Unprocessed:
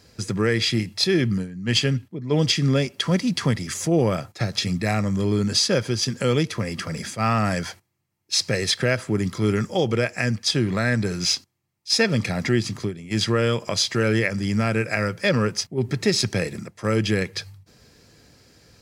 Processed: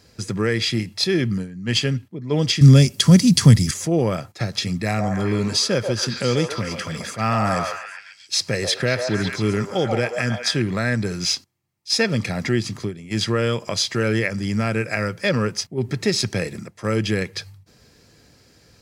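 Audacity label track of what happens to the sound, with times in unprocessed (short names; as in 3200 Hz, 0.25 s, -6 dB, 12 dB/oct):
2.610000	3.710000	tone controls bass +14 dB, treble +15 dB
4.840000	10.620000	delay with a stepping band-pass 0.136 s, band-pass from 750 Hz, each repeat 0.7 oct, level 0 dB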